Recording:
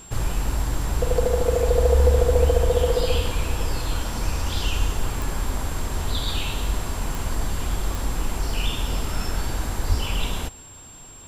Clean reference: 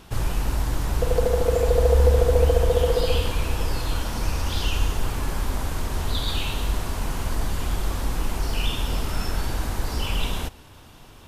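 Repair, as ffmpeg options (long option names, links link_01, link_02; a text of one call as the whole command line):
ffmpeg -i in.wav -filter_complex "[0:a]adeclick=threshold=4,bandreject=frequency=7500:width=30,asplit=3[link_01][link_02][link_03];[link_01]afade=type=out:start_time=9.88:duration=0.02[link_04];[link_02]highpass=frequency=140:width=0.5412,highpass=frequency=140:width=1.3066,afade=type=in:start_time=9.88:duration=0.02,afade=type=out:start_time=10:duration=0.02[link_05];[link_03]afade=type=in:start_time=10:duration=0.02[link_06];[link_04][link_05][link_06]amix=inputs=3:normalize=0" out.wav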